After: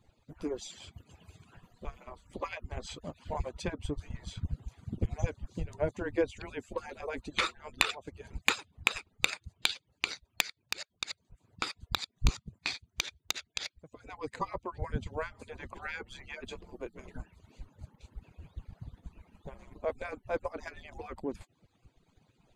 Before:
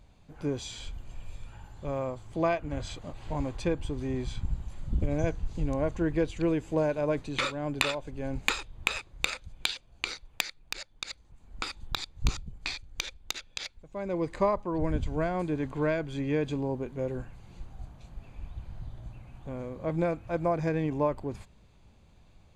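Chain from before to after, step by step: median-filter separation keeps percussive; transient shaper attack +1 dB, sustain -3 dB

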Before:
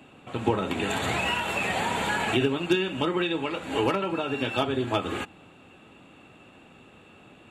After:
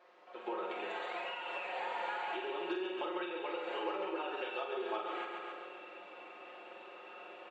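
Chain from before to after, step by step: opening faded in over 1.93 s; high shelf 2600 Hz +9.5 dB; added noise pink -59 dBFS; HPF 440 Hz 24 dB/oct; comb 5.6 ms, depth 87%; feedback echo 0.136 s, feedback 48%, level -8 dB; compressor 6:1, threshold -35 dBFS, peak gain reduction 17 dB; tape spacing loss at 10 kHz 45 dB; flutter echo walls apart 7.9 m, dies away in 0.45 s; gain +3 dB

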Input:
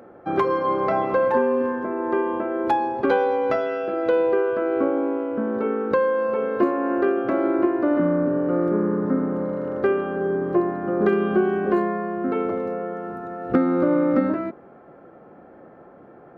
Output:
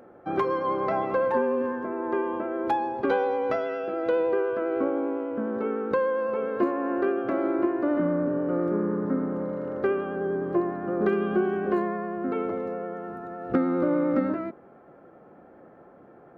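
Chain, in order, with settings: vibrato 9.9 Hz 23 cents; gain -4.5 dB

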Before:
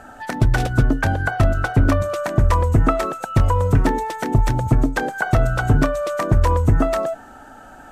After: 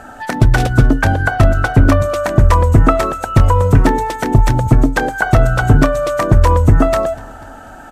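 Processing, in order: feedback echo 0.245 s, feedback 56%, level -23 dB; gain +6 dB

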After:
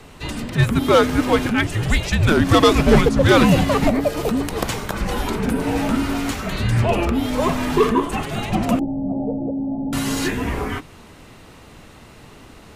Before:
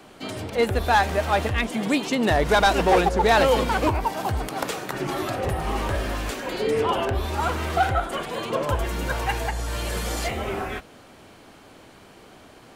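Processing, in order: frequency shift -330 Hz; 8.79–9.93 rippled Chebyshev low-pass 890 Hz, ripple 6 dB; gain +5 dB

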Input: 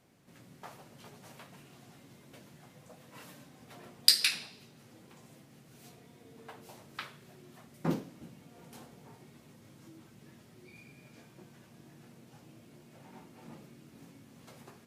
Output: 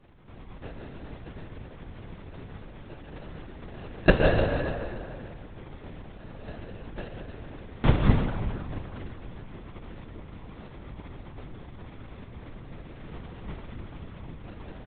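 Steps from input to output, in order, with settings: low shelf 250 Hz +10.5 dB; sample-and-hold 40×; feedback echo 0.297 s, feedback 39%, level -12.5 dB; on a send at -3 dB: reverb RT60 2.2 s, pre-delay 0.113 s; on the sum: LPC vocoder at 8 kHz whisper; gain +5.5 dB

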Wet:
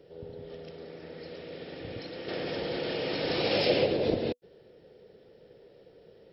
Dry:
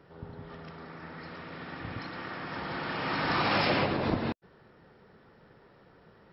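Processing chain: EQ curve 250 Hz 0 dB, 490 Hz +13 dB, 1100 Hz -13 dB, 3100 Hz +6 dB; 2.28–3.17 fast leveller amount 70%; gain -3.5 dB

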